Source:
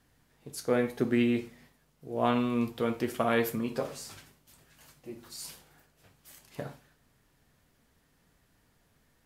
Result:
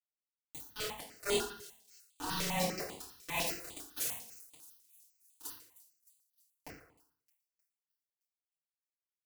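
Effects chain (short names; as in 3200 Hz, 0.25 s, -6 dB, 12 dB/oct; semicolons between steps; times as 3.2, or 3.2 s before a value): gliding pitch shift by +10.5 st ending unshifted; HPF 85 Hz 24 dB/oct; high shelf 4400 Hz +5.5 dB; comb 5 ms, depth 32%; compressor 6:1, threshold -37 dBFS, peak gain reduction 15.5 dB; auto swell 0.191 s; requantised 6-bit, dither none; on a send: thin delay 0.309 s, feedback 56%, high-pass 5600 Hz, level -15 dB; on the sum: FDN reverb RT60 0.65 s, low-frequency decay 1×, high-frequency decay 0.8×, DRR -10 dB; step phaser 10 Hz 230–5500 Hz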